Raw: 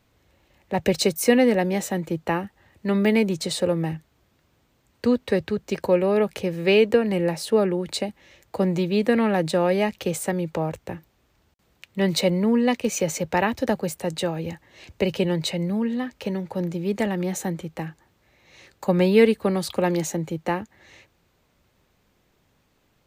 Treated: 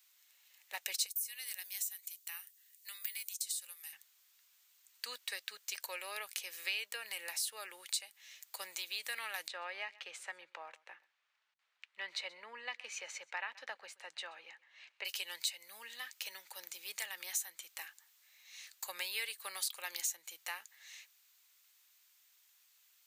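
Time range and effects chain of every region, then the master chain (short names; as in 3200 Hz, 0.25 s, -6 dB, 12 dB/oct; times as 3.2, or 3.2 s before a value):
1.06–3.93 differentiator + compressor, threshold -33 dBFS
9.48–15.05 LPF 2000 Hz + echo 0.128 s -23 dB
whole clip: HPF 1100 Hz 12 dB/oct; differentiator; compressor 2.5:1, threshold -44 dBFS; gain +6 dB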